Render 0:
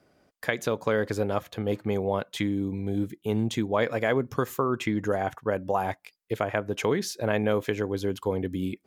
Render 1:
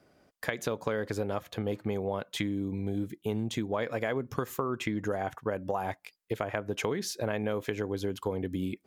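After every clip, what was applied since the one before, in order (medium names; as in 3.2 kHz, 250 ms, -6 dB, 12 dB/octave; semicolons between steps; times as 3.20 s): compression 4:1, threshold -28 dBFS, peak gain reduction 7.5 dB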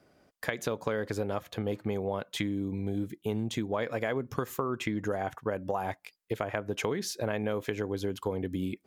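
no audible change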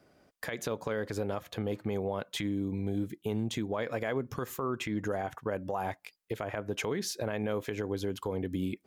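peak limiter -22 dBFS, peak gain reduction 9 dB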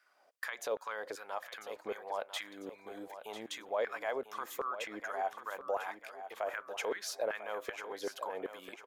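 LFO high-pass saw down 2.6 Hz 470–1600 Hz; on a send: feedback delay 996 ms, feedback 43%, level -11.5 dB; on the sum: trim -4.5 dB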